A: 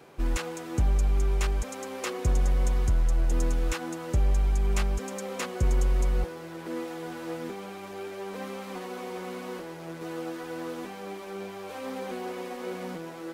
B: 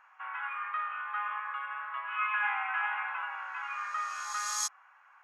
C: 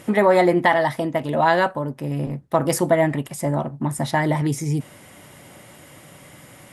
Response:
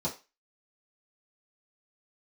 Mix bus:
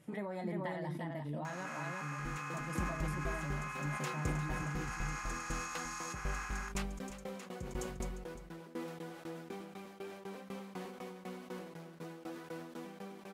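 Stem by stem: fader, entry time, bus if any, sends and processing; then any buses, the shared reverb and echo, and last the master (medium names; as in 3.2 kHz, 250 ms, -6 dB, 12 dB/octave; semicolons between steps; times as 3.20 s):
-5.0 dB, 2.00 s, no bus, no send, echo send -13.5 dB, bass shelf 230 Hz -9 dB; level rider gain up to 4 dB; sawtooth tremolo in dB decaying 4 Hz, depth 23 dB
-2.5 dB, 1.45 s, bus A, no send, no echo send, spectral levelling over time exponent 0.2
-12.5 dB, 0.00 s, bus A, no send, echo send -14 dB, none
bus A: 0.0 dB, feedback comb 150 Hz, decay 0.21 s, harmonics all, mix 70%; compression, threshold -36 dBFS, peak gain reduction 7.5 dB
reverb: none
echo: delay 351 ms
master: flange 0.32 Hz, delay 1.7 ms, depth 9.3 ms, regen -79%; peaking EQ 180 Hz +11 dB 0.99 oct; decay stretcher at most 47 dB/s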